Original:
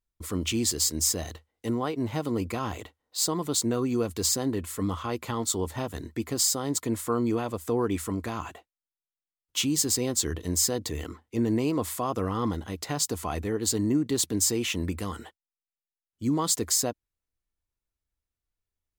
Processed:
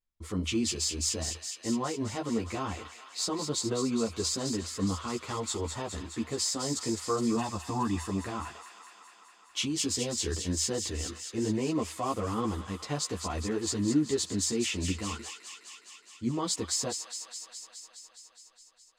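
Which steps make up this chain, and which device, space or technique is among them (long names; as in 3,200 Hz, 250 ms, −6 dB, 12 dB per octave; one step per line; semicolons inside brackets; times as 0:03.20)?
0:07.36–0:08.06: comb filter 1.1 ms, depth 81%
string-machine ensemble chorus (string-ensemble chorus; low-pass filter 7,000 Hz 12 dB per octave)
delay with a high-pass on its return 208 ms, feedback 75%, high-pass 1,500 Hz, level −7 dB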